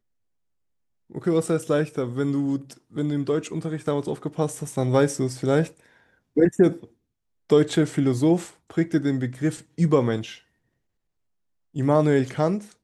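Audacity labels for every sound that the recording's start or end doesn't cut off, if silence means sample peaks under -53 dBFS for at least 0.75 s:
1.100000	10.420000	sound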